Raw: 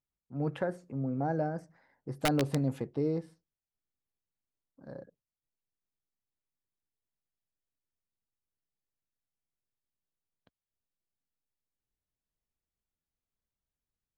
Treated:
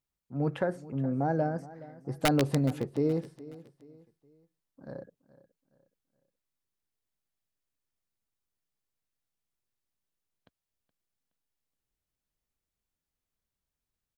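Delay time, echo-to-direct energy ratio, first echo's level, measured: 0.421 s, -18.0 dB, -18.5 dB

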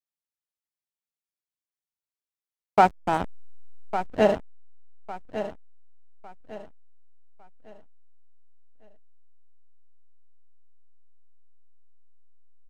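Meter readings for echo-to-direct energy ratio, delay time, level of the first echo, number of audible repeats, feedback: -10.5 dB, 1.154 s, -11.0 dB, 3, 33%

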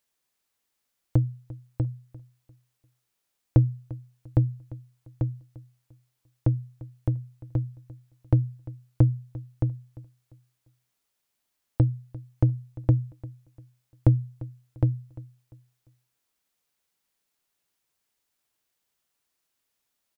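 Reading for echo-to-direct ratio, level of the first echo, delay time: -18.5 dB, -19.0 dB, 0.347 s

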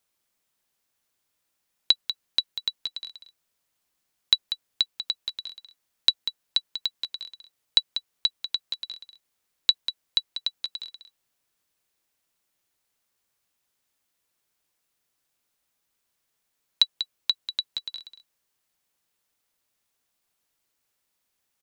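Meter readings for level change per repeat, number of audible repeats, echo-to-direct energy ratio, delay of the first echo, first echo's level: no steady repeat, 1, -10.5 dB, 0.192 s, -10.5 dB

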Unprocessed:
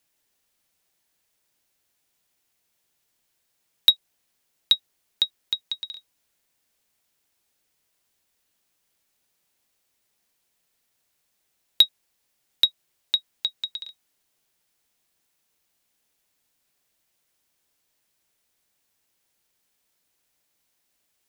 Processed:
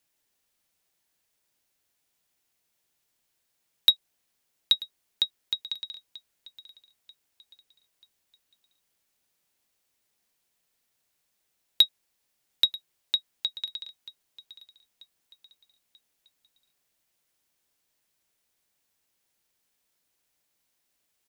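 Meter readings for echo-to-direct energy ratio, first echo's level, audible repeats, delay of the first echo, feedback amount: -19.0 dB, -20.0 dB, 3, 0.937 s, 43%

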